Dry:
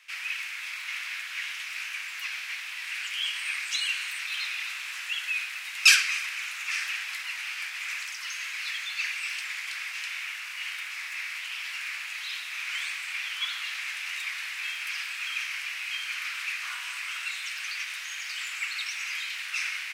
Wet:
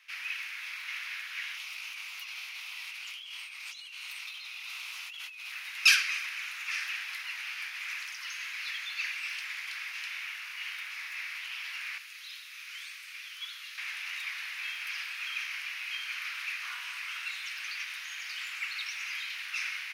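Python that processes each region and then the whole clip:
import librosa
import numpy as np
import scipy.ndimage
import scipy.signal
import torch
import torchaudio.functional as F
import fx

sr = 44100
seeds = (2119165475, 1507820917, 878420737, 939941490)

y = fx.chain(x, sr, fx.over_compress(threshold_db=-36.0, ratio=-1.0),
    fx.peak_eq(hz=1700.0, db=-13.0, octaves=0.52), at=(1.57, 5.52))
y = fx.chain(y, sr, fx.highpass(hz=1200.0, slope=24),
    fx.peak_eq(hz=1900.0, db=-8.5, octaves=2.1), at=(11.98, 13.78))
y = scipy.signal.sosfilt(scipy.signal.butter(4, 660.0, 'highpass', fs=sr, output='sos'), y)
y = fx.peak_eq(y, sr, hz=7800.0, db=-11.5, octaves=0.31)
y = y * 10.0 ** (-3.5 / 20.0)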